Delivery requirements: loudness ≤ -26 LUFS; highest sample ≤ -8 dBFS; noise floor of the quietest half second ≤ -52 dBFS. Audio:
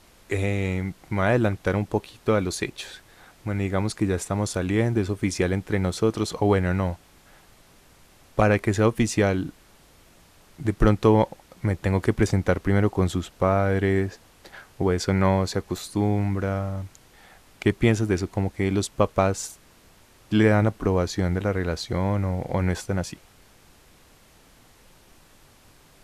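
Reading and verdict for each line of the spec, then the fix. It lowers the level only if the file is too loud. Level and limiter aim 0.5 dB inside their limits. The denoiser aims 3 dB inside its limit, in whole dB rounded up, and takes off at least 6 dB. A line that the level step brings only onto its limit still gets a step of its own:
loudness -24.5 LUFS: fail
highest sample -5.5 dBFS: fail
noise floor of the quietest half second -54 dBFS: OK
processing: gain -2 dB; limiter -8.5 dBFS

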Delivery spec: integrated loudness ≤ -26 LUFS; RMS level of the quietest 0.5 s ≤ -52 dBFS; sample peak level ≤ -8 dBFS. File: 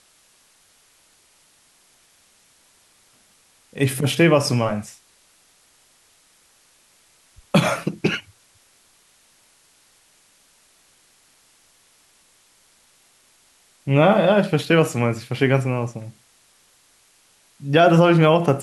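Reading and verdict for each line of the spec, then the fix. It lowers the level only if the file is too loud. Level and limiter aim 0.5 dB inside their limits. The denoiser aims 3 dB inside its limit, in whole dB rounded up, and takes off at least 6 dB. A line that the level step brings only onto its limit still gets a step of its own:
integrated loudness -18.5 LUFS: fail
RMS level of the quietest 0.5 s -58 dBFS: OK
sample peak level -4.0 dBFS: fail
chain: gain -8 dB

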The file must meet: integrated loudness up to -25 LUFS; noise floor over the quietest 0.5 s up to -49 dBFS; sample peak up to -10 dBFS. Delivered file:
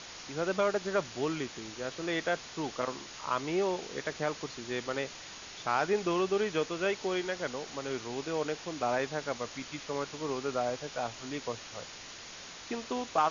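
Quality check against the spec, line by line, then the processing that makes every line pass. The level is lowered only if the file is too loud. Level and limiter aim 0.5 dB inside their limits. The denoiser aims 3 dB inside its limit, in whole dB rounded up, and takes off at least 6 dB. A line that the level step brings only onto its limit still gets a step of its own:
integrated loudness -34.0 LUFS: OK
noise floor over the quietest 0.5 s -47 dBFS: fail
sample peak -14.0 dBFS: OK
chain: denoiser 6 dB, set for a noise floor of -47 dBFS

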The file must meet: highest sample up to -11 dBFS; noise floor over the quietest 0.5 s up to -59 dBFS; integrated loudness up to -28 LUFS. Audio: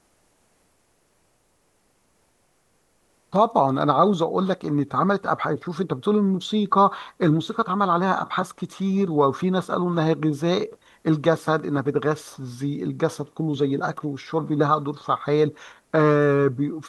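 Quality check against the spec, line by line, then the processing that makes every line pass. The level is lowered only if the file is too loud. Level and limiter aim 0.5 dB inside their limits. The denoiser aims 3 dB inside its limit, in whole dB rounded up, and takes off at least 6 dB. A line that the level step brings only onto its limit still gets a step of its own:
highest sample -5.5 dBFS: fail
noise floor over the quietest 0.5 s -65 dBFS: OK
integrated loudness -22.5 LUFS: fail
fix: gain -6 dB

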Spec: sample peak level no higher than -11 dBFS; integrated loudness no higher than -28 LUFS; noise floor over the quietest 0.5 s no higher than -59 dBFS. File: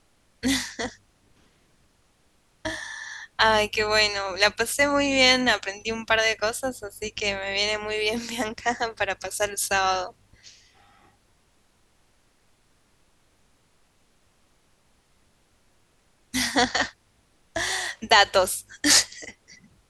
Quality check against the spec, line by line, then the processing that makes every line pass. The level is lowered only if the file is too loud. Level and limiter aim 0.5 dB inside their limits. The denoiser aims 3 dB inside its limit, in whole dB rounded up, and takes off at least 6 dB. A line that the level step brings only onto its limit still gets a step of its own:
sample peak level -3.5 dBFS: fail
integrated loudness -23.0 LUFS: fail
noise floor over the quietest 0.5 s -63 dBFS: OK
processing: gain -5.5 dB; limiter -11.5 dBFS

